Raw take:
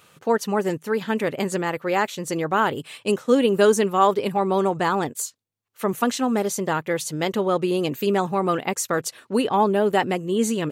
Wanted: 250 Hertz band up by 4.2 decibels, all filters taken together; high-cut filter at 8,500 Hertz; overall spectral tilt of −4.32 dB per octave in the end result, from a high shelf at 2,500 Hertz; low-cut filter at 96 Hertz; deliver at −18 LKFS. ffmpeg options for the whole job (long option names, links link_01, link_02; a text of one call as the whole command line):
ffmpeg -i in.wav -af "highpass=96,lowpass=8500,equalizer=frequency=250:width_type=o:gain=5.5,highshelf=frequency=2500:gain=7.5,volume=2dB" out.wav